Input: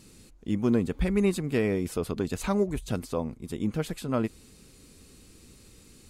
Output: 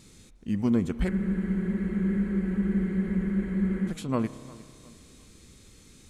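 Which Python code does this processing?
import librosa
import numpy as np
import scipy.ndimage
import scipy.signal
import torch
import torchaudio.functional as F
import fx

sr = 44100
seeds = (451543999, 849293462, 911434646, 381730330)

p1 = fx.formant_shift(x, sr, semitones=-2)
p2 = p1 + fx.echo_feedback(p1, sr, ms=354, feedback_pct=39, wet_db=-20.5, dry=0)
p3 = fx.rev_spring(p2, sr, rt60_s=2.3, pass_ms=(30,), chirp_ms=50, drr_db=14.5)
y = fx.spec_freeze(p3, sr, seeds[0], at_s=1.12, hold_s=2.77)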